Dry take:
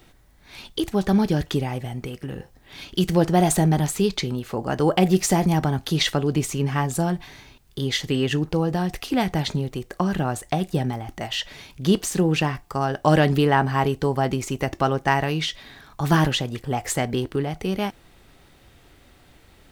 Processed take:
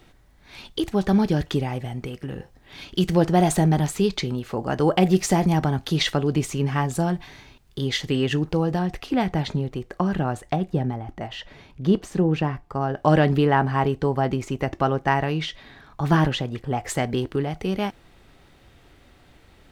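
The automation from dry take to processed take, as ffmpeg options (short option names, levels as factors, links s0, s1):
-af "asetnsamples=n=441:p=0,asendcmd='8.79 lowpass f 2400;10.56 lowpass f 1100;12.97 lowpass f 2400;16.89 lowpass f 5200',lowpass=f=5700:p=1"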